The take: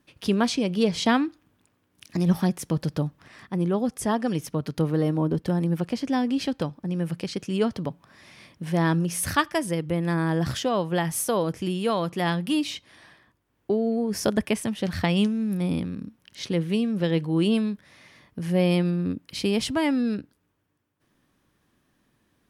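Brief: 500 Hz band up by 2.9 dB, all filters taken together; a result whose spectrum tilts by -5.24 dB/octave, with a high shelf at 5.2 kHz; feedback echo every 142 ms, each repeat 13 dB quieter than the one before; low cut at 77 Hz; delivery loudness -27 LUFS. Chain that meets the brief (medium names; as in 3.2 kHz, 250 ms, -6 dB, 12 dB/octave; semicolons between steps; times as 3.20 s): high-pass 77 Hz; peaking EQ 500 Hz +3.5 dB; treble shelf 5.2 kHz +5.5 dB; feedback delay 142 ms, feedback 22%, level -13 dB; trim -3 dB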